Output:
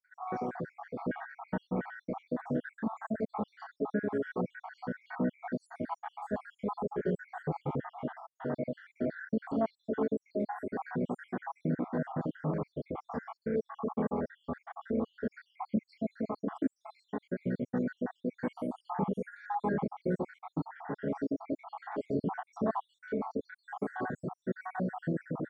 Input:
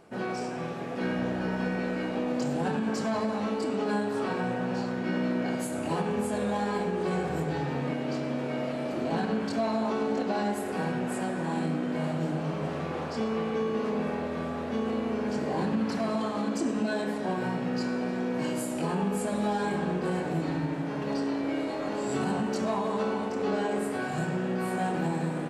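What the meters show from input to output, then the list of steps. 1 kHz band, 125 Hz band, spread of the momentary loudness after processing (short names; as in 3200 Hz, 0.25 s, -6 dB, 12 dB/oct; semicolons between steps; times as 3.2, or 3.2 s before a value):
-6.0 dB, -6.0 dB, 7 LU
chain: random spectral dropouts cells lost 73%; polynomial smoothing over 41 samples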